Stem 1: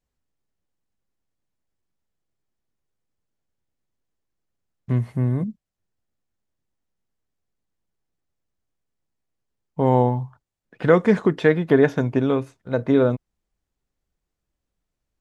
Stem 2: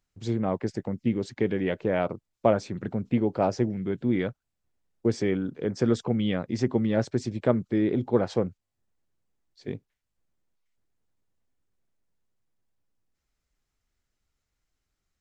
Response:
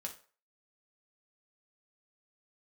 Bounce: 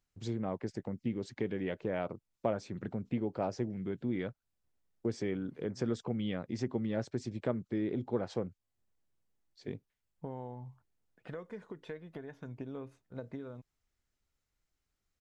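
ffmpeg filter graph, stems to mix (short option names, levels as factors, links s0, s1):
-filter_complex "[0:a]acompressor=threshold=0.0631:ratio=12,aphaser=in_gain=1:out_gain=1:delay=2.1:decay=0.28:speed=0.4:type=sinusoidal,adelay=450,volume=0.15[s0];[1:a]acompressor=threshold=0.0158:ratio=1.5,volume=0.631,asplit=2[s1][s2];[s2]apad=whole_len=690482[s3];[s0][s3]sidechaincompress=threshold=0.00178:ratio=5:attack=16:release=149[s4];[s4][s1]amix=inputs=2:normalize=0"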